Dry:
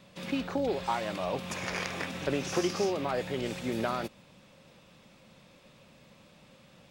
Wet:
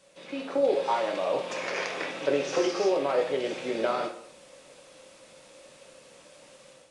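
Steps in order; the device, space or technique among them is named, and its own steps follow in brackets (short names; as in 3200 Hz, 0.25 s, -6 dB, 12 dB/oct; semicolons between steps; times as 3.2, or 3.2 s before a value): filmed off a television (BPF 290–6300 Hz; bell 530 Hz +9.5 dB 0.38 oct; reverb RT60 0.60 s, pre-delay 4 ms, DRR 1.5 dB; white noise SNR 25 dB; AGC gain up to 8 dB; gain -7.5 dB; AAC 96 kbps 22050 Hz)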